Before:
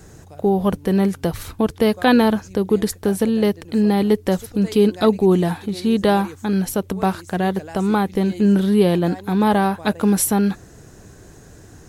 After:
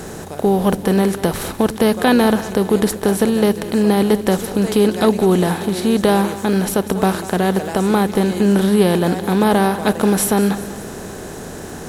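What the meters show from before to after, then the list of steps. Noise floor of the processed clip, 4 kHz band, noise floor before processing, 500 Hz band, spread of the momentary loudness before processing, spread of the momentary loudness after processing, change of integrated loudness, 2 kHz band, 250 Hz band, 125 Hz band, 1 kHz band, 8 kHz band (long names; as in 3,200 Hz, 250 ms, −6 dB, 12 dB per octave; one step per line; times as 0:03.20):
−31 dBFS, +4.0 dB, −45 dBFS, +3.0 dB, 7 LU, 7 LU, +2.5 dB, +4.0 dB, +2.0 dB, +2.0 dB, +2.5 dB, +3.5 dB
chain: compressor on every frequency bin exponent 0.6
echo with a time of its own for lows and highs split 340 Hz, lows 104 ms, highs 193 ms, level −14.5 dB
surface crackle 59 per second −30 dBFS
level −1 dB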